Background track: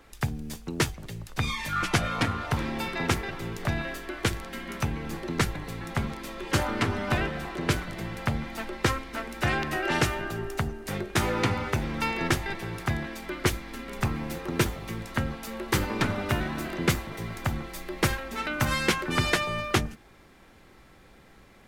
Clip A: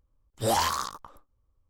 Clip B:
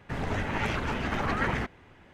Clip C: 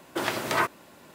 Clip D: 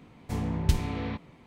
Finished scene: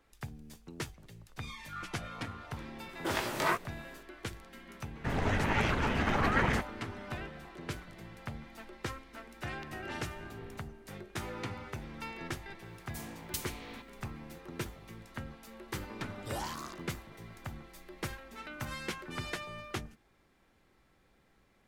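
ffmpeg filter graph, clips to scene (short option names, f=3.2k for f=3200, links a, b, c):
-filter_complex "[4:a]asplit=2[a][b];[0:a]volume=-14dB[c];[3:a]flanger=delay=16.5:depth=4.7:speed=2.6[d];[a]acompressor=threshold=-36dB:ratio=6:attack=3.2:release=140:knee=1:detection=peak[e];[b]aemphasis=mode=production:type=riaa[f];[1:a]alimiter=level_in=0.5dB:limit=-24dB:level=0:latency=1:release=453,volume=-0.5dB[g];[d]atrim=end=1.14,asetpts=PTS-STARTPTS,volume=-2dB,afade=t=in:d=0.004:c=hsin,afade=t=out:st=1.136:d=0.004:c=hsin,adelay=2890[h];[2:a]atrim=end=2.13,asetpts=PTS-STARTPTS,afade=t=in:d=0.004:c=hsin,afade=t=out:st=2.126:d=0.004:c=hsin,adelay=4950[i];[e]atrim=end=1.46,asetpts=PTS-STARTPTS,volume=-10.5dB,afade=t=in:d=0.004:c=hsin,afade=t=out:st=1.456:d=0.004:c=hsin,adelay=9420[j];[f]atrim=end=1.46,asetpts=PTS-STARTPTS,volume=-10dB,afade=t=in:d=0.004:c=hsin,afade=t=out:st=1.456:d=0.004:c=hsin,adelay=12650[k];[g]atrim=end=1.69,asetpts=PTS-STARTPTS,volume=-8.5dB,afade=t=in:d=0.004:c=hsin,afade=t=out:st=1.686:d=0.004:c=hsin,adelay=15850[l];[c][h][i][j][k][l]amix=inputs=6:normalize=0"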